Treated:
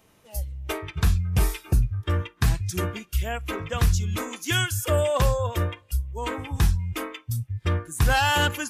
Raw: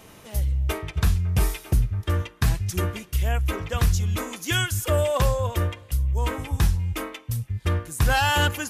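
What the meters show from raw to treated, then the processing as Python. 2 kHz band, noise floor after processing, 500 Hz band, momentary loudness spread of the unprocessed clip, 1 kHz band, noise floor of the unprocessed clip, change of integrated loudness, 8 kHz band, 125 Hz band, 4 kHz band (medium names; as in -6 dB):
0.0 dB, -60 dBFS, 0.0 dB, 7 LU, 0.0 dB, -49 dBFS, -1.0 dB, -0.5 dB, -1.5 dB, 0.0 dB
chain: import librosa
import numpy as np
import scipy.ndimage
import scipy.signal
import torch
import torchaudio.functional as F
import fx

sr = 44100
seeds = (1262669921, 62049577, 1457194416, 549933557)

y = fx.noise_reduce_blind(x, sr, reduce_db=12)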